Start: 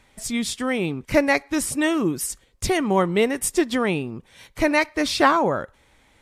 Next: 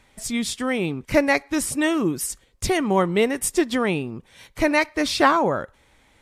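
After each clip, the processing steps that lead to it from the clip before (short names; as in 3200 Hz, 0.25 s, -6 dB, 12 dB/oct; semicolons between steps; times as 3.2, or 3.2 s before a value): nothing audible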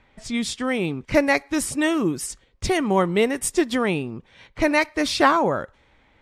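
low-pass opened by the level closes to 2900 Hz, open at -18.5 dBFS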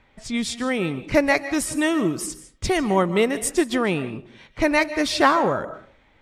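reverb RT60 0.45 s, pre-delay 0.105 s, DRR 13 dB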